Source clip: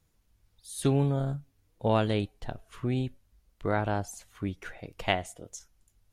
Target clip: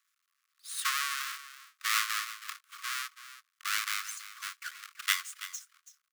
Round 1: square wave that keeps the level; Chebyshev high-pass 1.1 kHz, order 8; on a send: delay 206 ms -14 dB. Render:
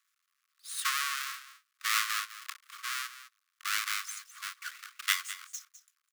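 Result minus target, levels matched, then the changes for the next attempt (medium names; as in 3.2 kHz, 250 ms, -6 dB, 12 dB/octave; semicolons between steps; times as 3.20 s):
echo 124 ms early
change: delay 330 ms -14 dB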